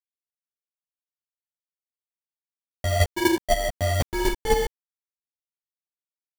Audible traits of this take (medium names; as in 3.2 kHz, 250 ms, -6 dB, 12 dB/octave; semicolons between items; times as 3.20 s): a quantiser's noise floor 6-bit, dither none; chopped level 4 Hz, depth 60%, duty 10%; aliases and images of a low sample rate 1.3 kHz, jitter 0%; a shimmering, thickened sound